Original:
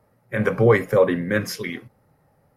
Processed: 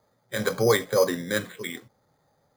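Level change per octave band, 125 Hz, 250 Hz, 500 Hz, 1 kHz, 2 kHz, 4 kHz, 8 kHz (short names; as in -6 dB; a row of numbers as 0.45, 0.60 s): -9.5, -7.0, -4.5, -3.5, -4.5, +4.0, +5.5 dB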